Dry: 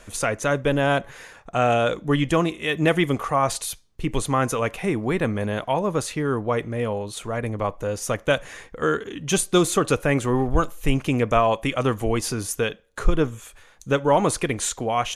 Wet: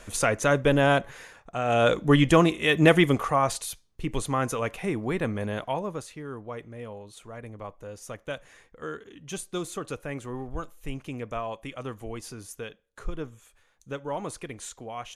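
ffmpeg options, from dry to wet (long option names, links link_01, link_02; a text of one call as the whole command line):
ffmpeg -i in.wav -af "volume=11dB,afade=type=out:start_time=0.84:duration=0.8:silence=0.354813,afade=type=in:start_time=1.64:duration=0.26:silence=0.281838,afade=type=out:start_time=2.87:duration=0.74:silence=0.446684,afade=type=out:start_time=5.63:duration=0.44:silence=0.354813" out.wav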